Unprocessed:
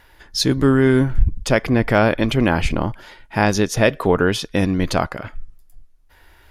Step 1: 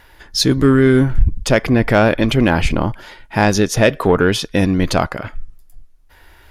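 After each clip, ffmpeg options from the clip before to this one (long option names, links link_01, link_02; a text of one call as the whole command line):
ffmpeg -i in.wav -af "acontrast=26,volume=-1dB" out.wav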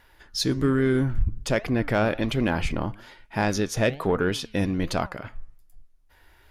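ffmpeg -i in.wav -af "flanger=delay=3.9:depth=6.5:regen=90:speed=1.2:shape=triangular,volume=-5.5dB" out.wav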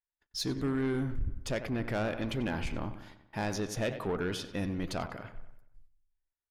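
ffmpeg -i in.wav -filter_complex "[0:a]agate=range=-38dB:threshold=-46dB:ratio=16:detection=peak,asplit=2[link_01][link_02];[link_02]adelay=94,lowpass=frequency=3600:poles=1,volume=-13dB,asplit=2[link_03][link_04];[link_04]adelay=94,lowpass=frequency=3600:poles=1,volume=0.53,asplit=2[link_05][link_06];[link_06]adelay=94,lowpass=frequency=3600:poles=1,volume=0.53,asplit=2[link_07][link_08];[link_08]adelay=94,lowpass=frequency=3600:poles=1,volume=0.53,asplit=2[link_09][link_10];[link_10]adelay=94,lowpass=frequency=3600:poles=1,volume=0.53[link_11];[link_03][link_05][link_07][link_09][link_11]amix=inputs=5:normalize=0[link_12];[link_01][link_12]amix=inputs=2:normalize=0,asoftclip=type=tanh:threshold=-17dB,volume=-7.5dB" out.wav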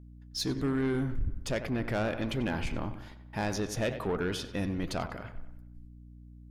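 ffmpeg -i in.wav -af "aeval=exprs='val(0)+0.00316*(sin(2*PI*60*n/s)+sin(2*PI*2*60*n/s)/2+sin(2*PI*3*60*n/s)/3+sin(2*PI*4*60*n/s)/4+sin(2*PI*5*60*n/s)/5)':channel_layout=same,volume=1.5dB" out.wav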